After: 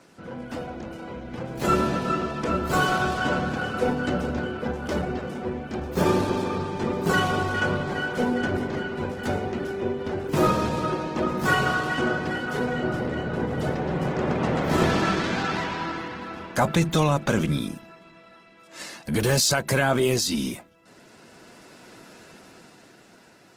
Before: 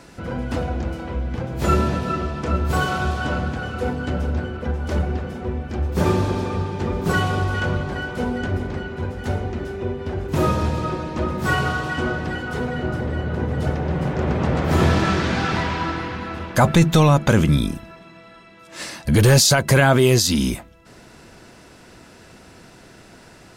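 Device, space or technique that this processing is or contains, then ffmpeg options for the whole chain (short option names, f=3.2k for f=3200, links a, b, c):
video call: -af "highpass=160,dynaudnorm=f=140:g=21:m=11.5dB,volume=-7dB" -ar 48000 -c:a libopus -b:a 16k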